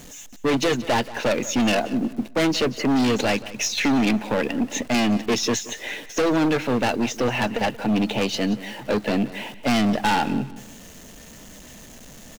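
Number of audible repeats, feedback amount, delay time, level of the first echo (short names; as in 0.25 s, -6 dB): 2, 28%, 0.18 s, -17.0 dB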